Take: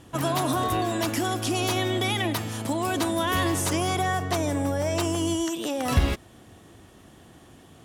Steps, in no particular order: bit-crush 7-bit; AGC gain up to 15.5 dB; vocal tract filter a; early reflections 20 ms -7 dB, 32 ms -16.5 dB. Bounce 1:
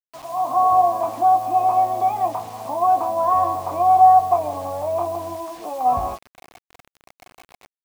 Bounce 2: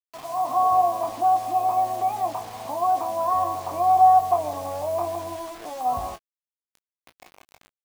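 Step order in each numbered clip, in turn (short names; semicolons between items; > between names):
vocal tract filter > AGC > early reflections > bit-crush; AGC > vocal tract filter > bit-crush > early reflections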